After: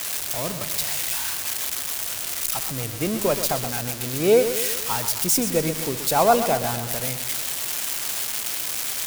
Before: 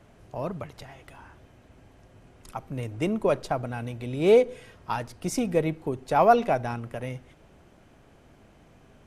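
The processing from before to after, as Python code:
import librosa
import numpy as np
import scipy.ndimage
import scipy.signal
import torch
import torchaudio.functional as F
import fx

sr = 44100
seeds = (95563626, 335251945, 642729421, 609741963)

p1 = x + 0.5 * 10.0 ** (-15.0 / 20.0) * np.diff(np.sign(x), prepend=np.sign(x[:1]))
p2 = p1 + fx.echo_feedback(p1, sr, ms=127, feedback_pct=53, wet_db=-10.0, dry=0)
y = p2 * librosa.db_to_amplitude(1.0)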